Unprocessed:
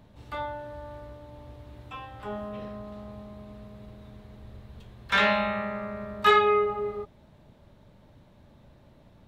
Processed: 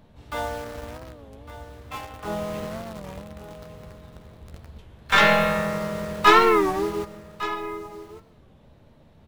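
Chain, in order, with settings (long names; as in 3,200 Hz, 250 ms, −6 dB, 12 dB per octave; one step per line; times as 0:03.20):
stylus tracing distortion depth 0.042 ms
in parallel at −4.5 dB: bit-depth reduction 6 bits, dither none
on the sum: pitch-shifted copies added −4 semitones −6 dB
double-tracking delay 13 ms −10.5 dB
single-tap delay 1,156 ms −14.5 dB
on a send at −14.5 dB: convolution reverb RT60 0.95 s, pre-delay 107 ms
on the sum: wow of a warped record 33 1/3 rpm, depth 160 cents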